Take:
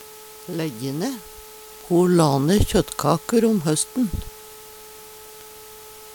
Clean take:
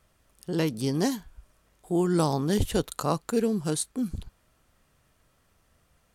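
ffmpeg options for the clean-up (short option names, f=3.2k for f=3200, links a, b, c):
-af "adeclick=t=4,bandreject=f=430.8:t=h:w=4,bandreject=f=861.6:t=h:w=4,bandreject=f=1.2924k:t=h:w=4,afwtdn=0.0071,asetnsamples=n=441:p=0,asendcmd='1.68 volume volume -7.5dB',volume=0dB"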